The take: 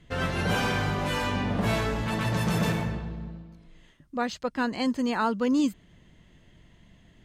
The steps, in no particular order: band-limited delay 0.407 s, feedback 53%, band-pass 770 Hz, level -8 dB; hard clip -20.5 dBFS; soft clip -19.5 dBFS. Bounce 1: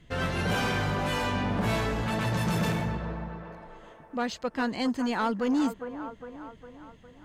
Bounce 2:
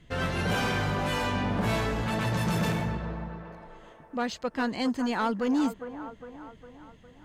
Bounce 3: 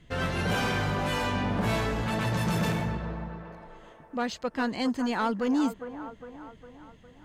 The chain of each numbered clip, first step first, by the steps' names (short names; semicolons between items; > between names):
band-limited delay > soft clip > hard clip; soft clip > band-limited delay > hard clip; soft clip > hard clip > band-limited delay